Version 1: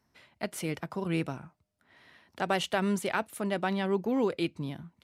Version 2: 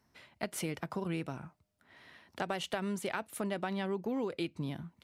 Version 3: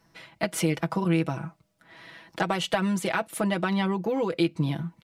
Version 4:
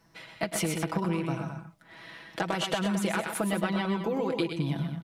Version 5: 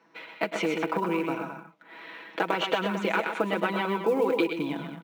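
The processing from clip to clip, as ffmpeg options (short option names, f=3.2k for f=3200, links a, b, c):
-af "acompressor=threshold=-33dB:ratio=6,volume=1dB"
-af "highshelf=f=10k:g=-4.5,aecho=1:1:6.1:0.78,volume=8dB"
-filter_complex "[0:a]acompressor=threshold=-26dB:ratio=6,asplit=2[a][b];[b]aecho=0:1:106|125|216:0.237|0.473|0.282[c];[a][c]amix=inputs=2:normalize=0"
-af "highpass=f=210:w=0.5412,highpass=f=210:w=1.3066,equalizer=f=300:t=q:w=4:g=4,equalizer=f=460:t=q:w=4:g=8,equalizer=f=940:t=q:w=4:g=6,equalizer=f=1.4k:t=q:w=4:g=5,equalizer=f=2.4k:t=q:w=4:g=7,equalizer=f=5k:t=q:w=4:g=-9,lowpass=f=5.5k:w=0.5412,lowpass=f=5.5k:w=1.3066,acrusher=bits=8:mode=log:mix=0:aa=0.000001"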